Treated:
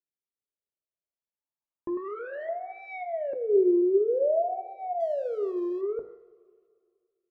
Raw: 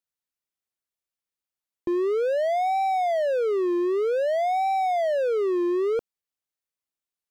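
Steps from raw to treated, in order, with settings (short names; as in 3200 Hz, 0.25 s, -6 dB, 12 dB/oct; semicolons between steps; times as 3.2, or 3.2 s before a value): notch 770 Hz, Q 12; de-hum 53.03 Hz, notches 39; treble ducked by the level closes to 740 Hz, closed at -22.5 dBFS; 1.97–2.49 hard clip -31 dBFS, distortion -13 dB; 3.55–3.98 comb 2.2 ms, depth 70%; LFO low-pass saw up 0.3 Hz 350–2700 Hz; 5–5.81 backlash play -42 dBFS; two-slope reverb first 0.35 s, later 2.2 s, from -17 dB, DRR 8.5 dB; gain -7 dB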